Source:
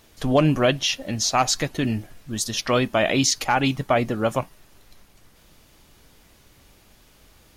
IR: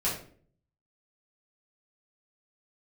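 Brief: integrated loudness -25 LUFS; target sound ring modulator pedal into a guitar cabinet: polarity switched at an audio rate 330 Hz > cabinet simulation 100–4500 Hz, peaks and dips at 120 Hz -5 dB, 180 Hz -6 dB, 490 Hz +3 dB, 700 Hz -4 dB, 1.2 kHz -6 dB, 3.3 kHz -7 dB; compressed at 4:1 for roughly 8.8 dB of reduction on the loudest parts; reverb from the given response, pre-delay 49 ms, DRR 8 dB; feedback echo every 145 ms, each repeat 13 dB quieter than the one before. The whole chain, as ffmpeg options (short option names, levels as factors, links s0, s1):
-filter_complex "[0:a]acompressor=threshold=0.0631:ratio=4,aecho=1:1:145|290|435:0.224|0.0493|0.0108,asplit=2[s0][s1];[1:a]atrim=start_sample=2205,adelay=49[s2];[s1][s2]afir=irnorm=-1:irlink=0,volume=0.158[s3];[s0][s3]amix=inputs=2:normalize=0,aeval=exprs='val(0)*sgn(sin(2*PI*330*n/s))':c=same,highpass=100,equalizer=f=120:t=q:w=4:g=-5,equalizer=f=180:t=q:w=4:g=-6,equalizer=f=490:t=q:w=4:g=3,equalizer=f=700:t=q:w=4:g=-4,equalizer=f=1200:t=q:w=4:g=-6,equalizer=f=3300:t=q:w=4:g=-7,lowpass=f=4500:w=0.5412,lowpass=f=4500:w=1.3066,volume=1.68"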